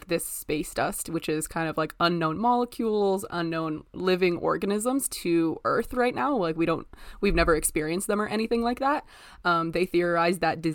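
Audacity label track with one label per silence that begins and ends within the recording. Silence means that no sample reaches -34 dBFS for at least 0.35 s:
9.000000	9.450000	silence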